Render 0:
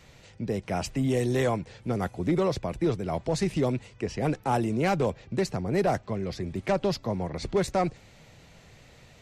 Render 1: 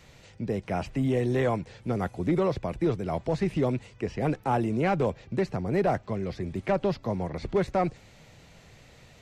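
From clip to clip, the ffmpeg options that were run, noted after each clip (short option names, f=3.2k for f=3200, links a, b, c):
-filter_complex "[0:a]acrossover=split=3200[a][b];[b]acompressor=threshold=-53dB:ratio=4:attack=1:release=60[c];[a][c]amix=inputs=2:normalize=0"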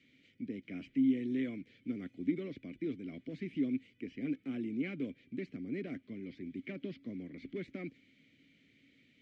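-filter_complex "[0:a]asplit=3[a][b][c];[a]bandpass=f=270:t=q:w=8,volume=0dB[d];[b]bandpass=f=2.29k:t=q:w=8,volume=-6dB[e];[c]bandpass=f=3.01k:t=q:w=8,volume=-9dB[f];[d][e][f]amix=inputs=3:normalize=0,volume=1dB"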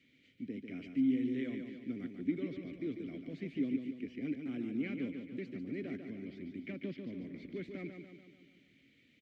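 -af "aecho=1:1:145|290|435|580|725|870|1015:0.473|0.256|0.138|0.0745|0.0402|0.0217|0.0117,volume=-1.5dB"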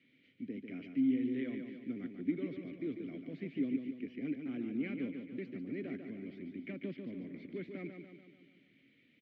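-af "highpass=120,lowpass=3.3k"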